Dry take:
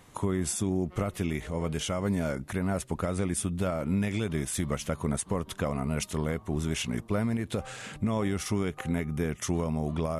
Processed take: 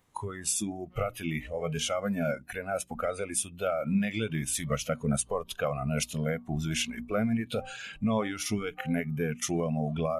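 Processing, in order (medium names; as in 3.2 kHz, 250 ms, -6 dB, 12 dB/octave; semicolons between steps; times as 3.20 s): spectral noise reduction 17 dB; hum notches 60/120/180/240/300 Hz; trim +3 dB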